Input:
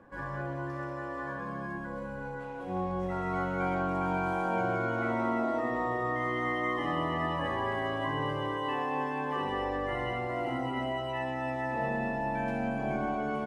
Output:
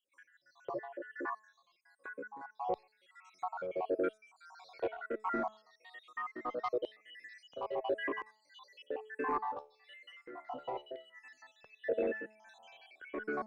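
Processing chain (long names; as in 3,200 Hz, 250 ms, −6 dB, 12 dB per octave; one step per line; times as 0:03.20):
time-frequency cells dropped at random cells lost 67%
auto-filter high-pass square 0.73 Hz 430–4,100 Hz
high-shelf EQ 3,500 Hz −11.5 dB
in parallel at −2 dB: downward compressor, threshold −43 dBFS, peak gain reduction 16 dB
on the sum: soft clipping −23.5 dBFS, distortion −19 dB
amplitude tremolo 1.5 Hz, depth 58%
0:09.38–0:11.25: tuned comb filter 73 Hz, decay 0.28 s, harmonics all, mix 60%
hum removal 216.5 Hz, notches 12
frequency shifter mixed with the dry sound −1 Hz
level +3 dB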